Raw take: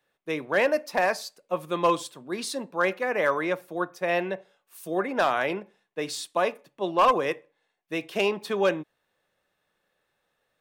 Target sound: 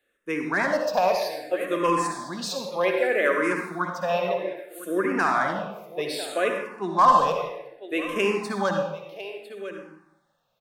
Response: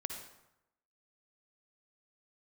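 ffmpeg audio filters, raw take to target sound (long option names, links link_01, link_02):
-filter_complex "[0:a]aecho=1:1:1002:0.188[link_01];[1:a]atrim=start_sample=2205,asetrate=41454,aresample=44100[link_02];[link_01][link_02]afir=irnorm=-1:irlink=0,asplit=2[link_03][link_04];[link_04]afreqshift=-0.63[link_05];[link_03][link_05]amix=inputs=2:normalize=1,volume=5dB"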